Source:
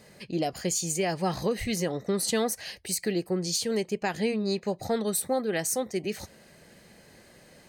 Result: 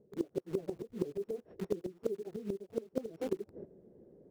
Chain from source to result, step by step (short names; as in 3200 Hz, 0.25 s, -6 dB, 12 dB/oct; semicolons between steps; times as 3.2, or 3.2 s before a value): sample sorter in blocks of 8 samples; low shelf 91 Hz -4 dB; plain phase-vocoder stretch 0.56×; synth low-pass 400 Hz, resonance Q 3.8; gate -49 dBFS, range -13 dB; in parallel at -7 dB: requantised 6-bit, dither none; on the sum: flipped gate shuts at -17 dBFS, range -29 dB; reverse; compressor 8:1, threshold -42 dBFS, peak gain reduction 18.5 dB; reverse; gain +10 dB